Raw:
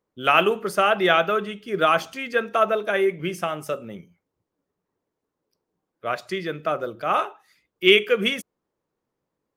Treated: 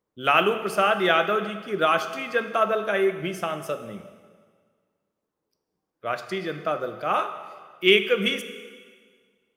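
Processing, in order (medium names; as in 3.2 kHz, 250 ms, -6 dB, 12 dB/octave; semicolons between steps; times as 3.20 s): plate-style reverb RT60 1.7 s, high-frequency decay 0.95×, DRR 9 dB; trim -2 dB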